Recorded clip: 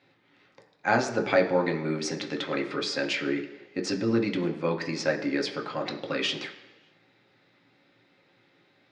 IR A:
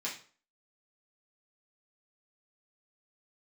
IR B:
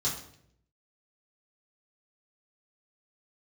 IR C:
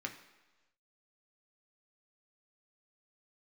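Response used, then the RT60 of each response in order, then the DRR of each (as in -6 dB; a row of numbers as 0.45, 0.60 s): C; 0.40, 0.70, 1.2 s; -6.5, -7.0, 2.5 dB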